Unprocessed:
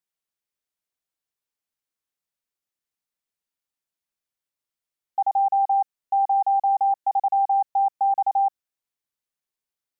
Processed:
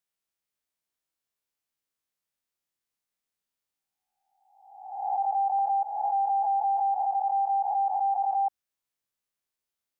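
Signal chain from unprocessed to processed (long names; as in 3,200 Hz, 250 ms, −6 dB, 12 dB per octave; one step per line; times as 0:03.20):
peak hold with a rise ahead of every peak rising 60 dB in 0.99 s
0:05.58–0:06.95: comb filter 6 ms, depth 86%
brickwall limiter −19.5 dBFS, peak gain reduction 6 dB
level −2 dB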